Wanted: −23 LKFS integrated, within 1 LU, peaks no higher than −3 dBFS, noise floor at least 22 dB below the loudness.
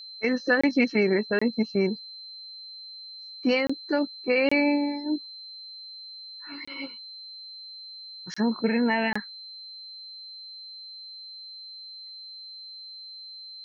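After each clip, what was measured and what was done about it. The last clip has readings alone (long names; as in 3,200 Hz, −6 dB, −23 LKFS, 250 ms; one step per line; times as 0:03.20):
number of dropouts 7; longest dropout 25 ms; interfering tone 4,100 Hz; level of the tone −40 dBFS; integrated loudness −26.0 LKFS; sample peak −9.5 dBFS; target loudness −23.0 LKFS
→ repair the gap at 0:00.61/0:01.39/0:03.67/0:04.49/0:06.65/0:08.34/0:09.13, 25 ms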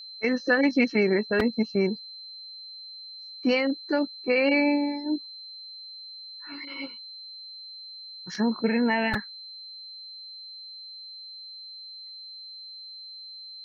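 number of dropouts 0; interfering tone 4,100 Hz; level of the tone −40 dBFS
→ notch filter 4,100 Hz, Q 30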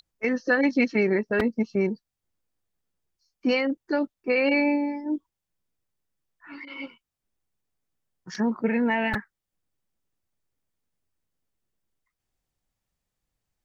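interfering tone none found; integrated loudness −25.0 LKFS; sample peak −10.0 dBFS; target loudness −23.0 LKFS
→ level +2 dB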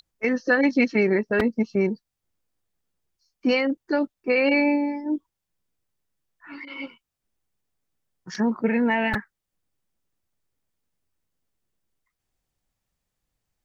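integrated loudness −23.0 LKFS; sample peak −8.0 dBFS; background noise floor −83 dBFS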